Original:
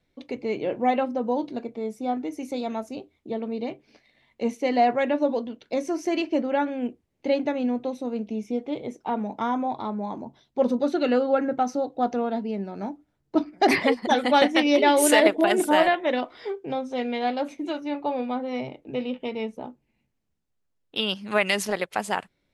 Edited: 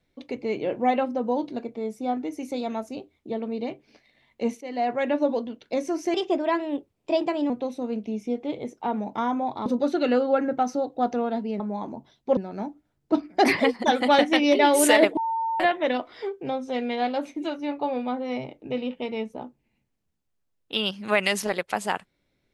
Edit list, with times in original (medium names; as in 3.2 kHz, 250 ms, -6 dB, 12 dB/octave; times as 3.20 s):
4.61–5.14 s: fade in linear, from -15.5 dB
6.14–7.73 s: speed 117%
9.89–10.66 s: move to 12.60 s
15.40–15.83 s: bleep 904 Hz -23.5 dBFS